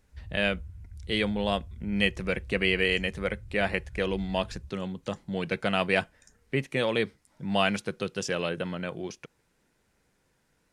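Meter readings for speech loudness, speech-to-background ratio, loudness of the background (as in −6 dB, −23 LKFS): −29.5 LKFS, 16.0 dB, −45.5 LKFS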